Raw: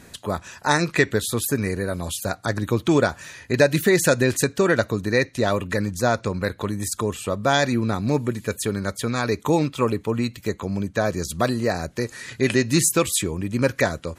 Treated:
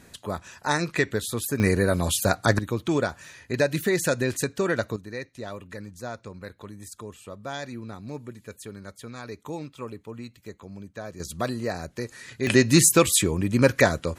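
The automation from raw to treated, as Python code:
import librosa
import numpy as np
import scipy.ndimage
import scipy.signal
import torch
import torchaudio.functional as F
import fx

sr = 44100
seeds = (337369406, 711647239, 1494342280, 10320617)

y = fx.gain(x, sr, db=fx.steps((0.0, -5.0), (1.6, 4.0), (2.59, -6.0), (4.96, -15.0), (11.2, -6.5), (12.47, 2.0)))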